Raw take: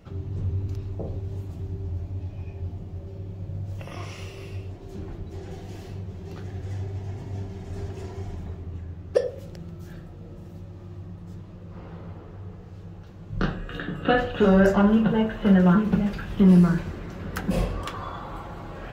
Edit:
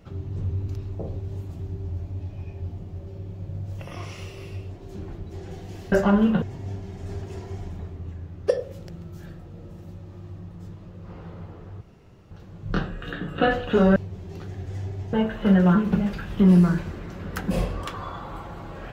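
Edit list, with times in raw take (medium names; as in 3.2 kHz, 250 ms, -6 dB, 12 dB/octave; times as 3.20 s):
5.92–7.09 s: swap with 14.63–15.13 s
12.48–12.98 s: room tone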